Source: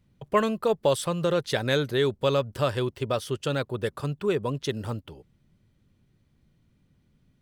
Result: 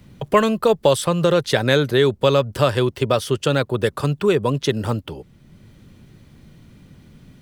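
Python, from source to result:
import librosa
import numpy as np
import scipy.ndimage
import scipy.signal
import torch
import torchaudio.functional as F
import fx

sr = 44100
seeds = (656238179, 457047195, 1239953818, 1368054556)

y = fx.band_squash(x, sr, depth_pct=40)
y = y * 10.0 ** (8.0 / 20.0)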